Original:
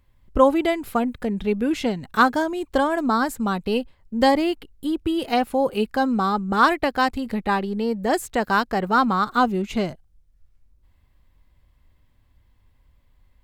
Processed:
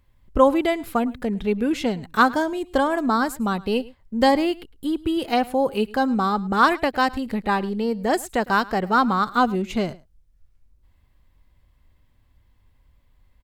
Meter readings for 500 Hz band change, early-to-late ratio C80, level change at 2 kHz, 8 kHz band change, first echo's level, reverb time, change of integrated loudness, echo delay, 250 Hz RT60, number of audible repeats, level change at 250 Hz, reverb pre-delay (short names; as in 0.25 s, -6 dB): 0.0 dB, none, 0.0 dB, 0.0 dB, -21.5 dB, none, 0.0 dB, 0.107 s, none, 1, 0.0 dB, none